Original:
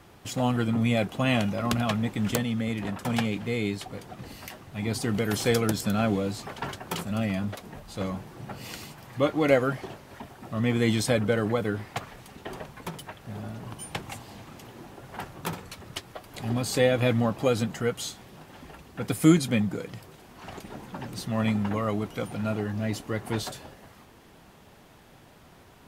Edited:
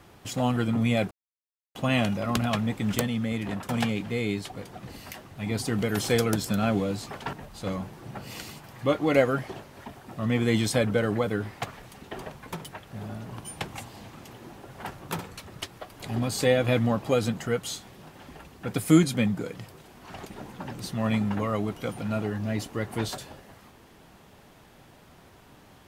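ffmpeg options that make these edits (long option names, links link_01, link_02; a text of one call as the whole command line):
ffmpeg -i in.wav -filter_complex "[0:a]asplit=3[link_01][link_02][link_03];[link_01]atrim=end=1.11,asetpts=PTS-STARTPTS,afade=type=out:start_time=1.106:duration=0.004:curve=hsin,apad=pad_dur=0.64[link_04];[link_02]atrim=start=1.11:end=6.692,asetpts=PTS-STARTPTS,afade=type=in:duration=0.004:curve=hsin[link_05];[link_03]atrim=start=7.668[link_06];[link_04][link_05]concat=n=2:v=0:a=1[link_07];[link_07][link_06]acrossfade=duration=0.004:curve1=hsin:curve2=hsin" out.wav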